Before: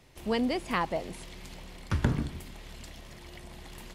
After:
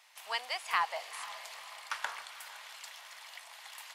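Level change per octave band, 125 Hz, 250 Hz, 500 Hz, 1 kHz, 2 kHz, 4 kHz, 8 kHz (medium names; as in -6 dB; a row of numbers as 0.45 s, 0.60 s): under -40 dB, under -35 dB, -12.5 dB, 0.0 dB, +1.5 dB, +2.0 dB, +2.5 dB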